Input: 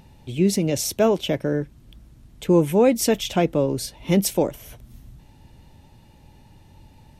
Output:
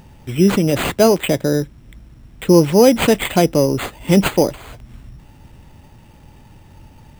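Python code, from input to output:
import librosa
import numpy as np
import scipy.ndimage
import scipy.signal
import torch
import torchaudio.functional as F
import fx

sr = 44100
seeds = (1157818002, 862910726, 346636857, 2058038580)

y = np.repeat(x[::8], 8)[:len(x)]
y = y * 10.0 ** (6.0 / 20.0)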